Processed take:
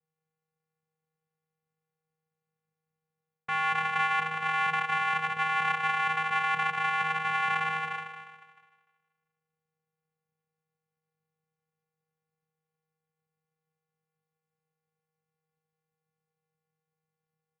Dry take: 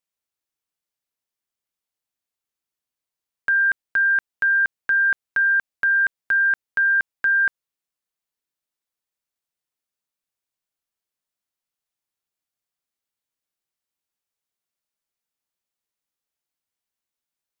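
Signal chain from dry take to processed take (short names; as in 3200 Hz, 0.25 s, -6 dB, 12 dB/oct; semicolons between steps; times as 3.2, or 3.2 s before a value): spectral trails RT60 1.43 s; LPF 1400 Hz 24 dB/oct; low shelf 180 Hz -3.5 dB; reverse; compressor 6:1, threshold -34 dBFS, peak gain reduction 11 dB; reverse; doubler 27 ms -10.5 dB; on a send: thinning echo 0.153 s, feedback 43%, high-pass 310 Hz, level -4 dB; on the sum: vocoder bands 4, square 158 Hz; gain +5 dB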